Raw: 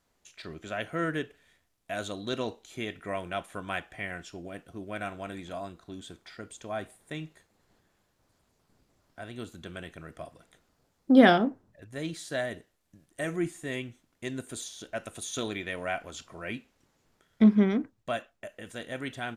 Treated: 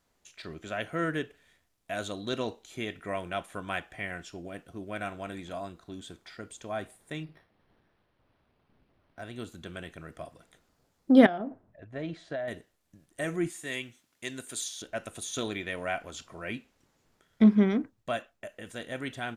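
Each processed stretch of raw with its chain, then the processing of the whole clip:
0:07.23–0:09.22: flutter between parallel walls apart 10 metres, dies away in 0.29 s + linearly interpolated sample-rate reduction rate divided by 6×
0:11.26–0:12.48: low-pass filter 2,500 Hz + parametric band 660 Hz +8.5 dB 0.29 octaves + downward compressor 10 to 1, threshold −30 dBFS
0:13.50–0:14.82: high-pass filter 120 Hz 6 dB per octave + tilt shelving filter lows −5 dB, about 1,300 Hz
whole clip: no processing

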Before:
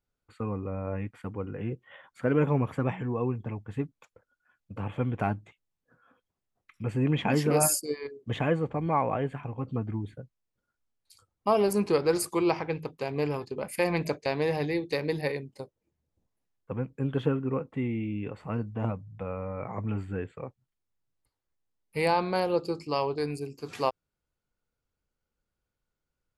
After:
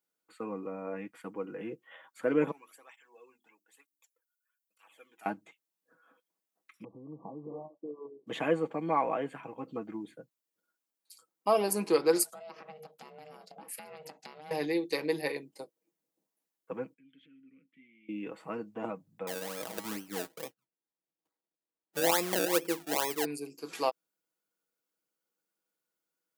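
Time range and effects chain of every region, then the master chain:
0:02.51–0:05.26: first difference + mains-hum notches 50/100/150/200/250/300/350 Hz + through-zero flanger with one copy inverted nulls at 1.1 Hz, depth 2 ms
0:06.84–0:08.27: parametric band 130 Hz +7 dB 0.59 octaves + downward compressor 12 to 1, threshold −34 dBFS + linear-phase brick-wall low-pass 1,200 Hz
0:12.23–0:14.51: downward compressor 12 to 1, threshold −38 dBFS + ring modulation 310 Hz
0:16.94–0:18.09: flat-topped bell 520 Hz −15 dB 2.5 octaves + downward compressor, threshold −38 dBFS + formant filter i
0:19.27–0:23.25: low-pass filter 1,400 Hz 6 dB per octave + sample-and-hold swept by an LFO 29× 2.3 Hz
whole clip: high-pass filter 220 Hz 24 dB per octave; high-shelf EQ 7,700 Hz +11 dB; comb filter 6.2 ms, depth 44%; level −3 dB

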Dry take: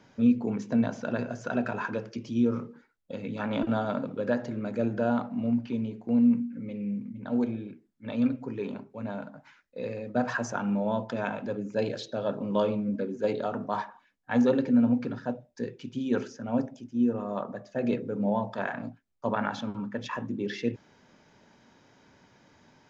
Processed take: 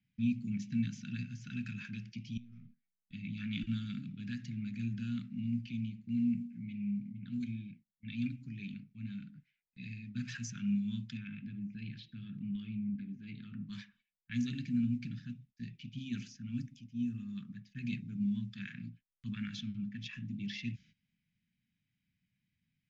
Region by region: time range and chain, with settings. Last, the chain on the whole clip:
0:02.37–0:03.12: gain on one half-wave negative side −3 dB + downward compressor 10 to 1, threshold −34 dBFS + tuned comb filter 95 Hz, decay 1.6 s, mix 50%
0:11.17–0:13.69: low-pass filter 2,500 Hz + downward compressor 2.5 to 1, threshold −29 dBFS
whole clip: low-pass that shuts in the quiet parts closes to 2,600 Hz, open at −21.5 dBFS; noise gate −51 dBFS, range −16 dB; Chebyshev band-stop filter 190–2,300 Hz, order 3; level −1 dB

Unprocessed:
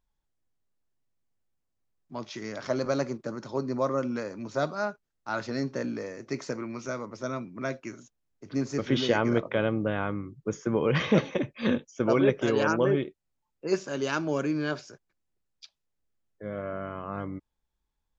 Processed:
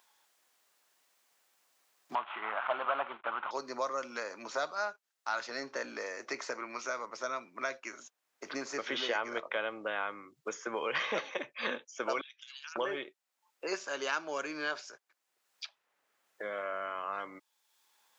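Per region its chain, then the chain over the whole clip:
0:02.15–0:03.51: variable-slope delta modulation 16 kbit/s + flat-topped bell 1,000 Hz +12 dB 1.3 octaves
0:12.21–0:12.76: four-pole ladder high-pass 2,900 Hz, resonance 45% + compressor whose output falls as the input rises −49 dBFS, ratio −0.5 + spectral tilt −2.5 dB per octave
whole clip: high-pass filter 810 Hz 12 dB per octave; multiband upward and downward compressor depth 70%

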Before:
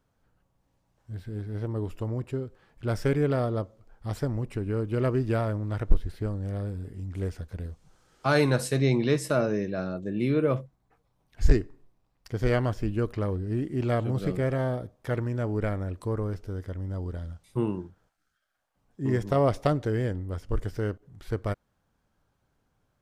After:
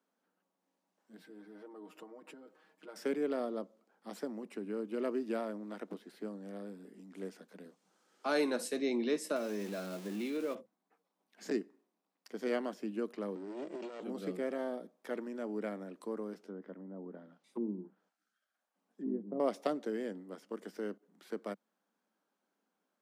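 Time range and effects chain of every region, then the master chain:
0:01.17–0:02.96: dynamic equaliser 970 Hz, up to +7 dB, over −49 dBFS, Q 0.7 + downward compressor 16 to 1, threshold −38 dBFS + comb filter 6.4 ms, depth 85%
0:09.36–0:10.55: converter with a step at zero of −37.5 dBFS + high-shelf EQ 2,100 Hz +8.5 dB + downward compressor 2 to 1, threshold −28 dBFS
0:13.35–0:14.02: lower of the sound and its delayed copy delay 2.1 ms + linear-phase brick-wall low-pass 8,600 Hz + compressor whose output falls as the input rises −30 dBFS, ratio −0.5
0:16.42–0:19.40: treble cut that deepens with the level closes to 330 Hz, closed at −26 dBFS + low-shelf EQ 110 Hz +9.5 dB
whole clip: Butterworth high-pass 190 Hz 72 dB per octave; dynamic equaliser 1,400 Hz, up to −3 dB, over −42 dBFS, Q 0.84; level −7 dB

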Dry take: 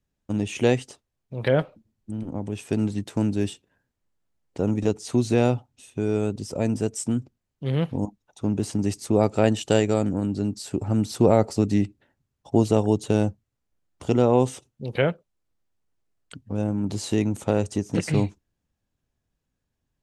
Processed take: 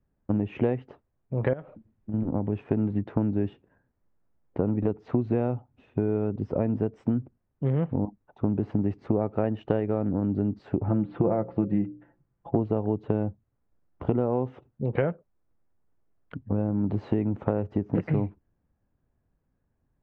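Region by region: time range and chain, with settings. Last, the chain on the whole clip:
0:01.53–0:02.14: high-shelf EQ 2,900 Hz +11 dB + downward compressor 4 to 1, threshold −35 dBFS
0:10.88–0:12.56: low-pass filter 3,600 Hz 24 dB per octave + mains-hum notches 60/120/180/240/300/360/420/480/540/600 Hz + comb filter 5.9 ms, depth 52%
whole clip: Bessel low-pass filter 1,300 Hz, order 4; downward compressor 6 to 1, threshold −27 dBFS; level +5.5 dB

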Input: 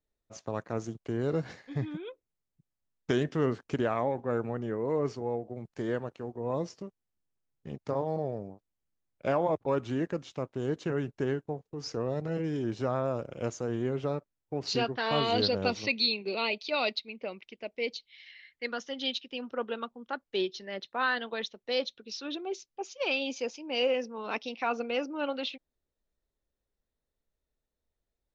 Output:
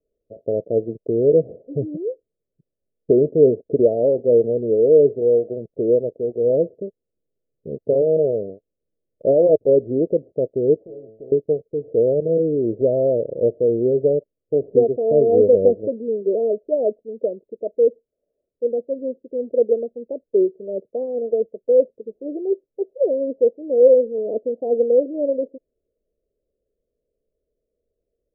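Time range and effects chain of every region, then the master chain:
0:10.77–0:11.32: samples sorted by size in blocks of 16 samples + tuned comb filter 110 Hz, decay 0.44 s, mix 90% + every bin compressed towards the loudest bin 2 to 1
whole clip: Chebyshev low-pass filter 650 Hz, order 6; parametric band 460 Hz +15 dB 0.97 octaves; level +4 dB

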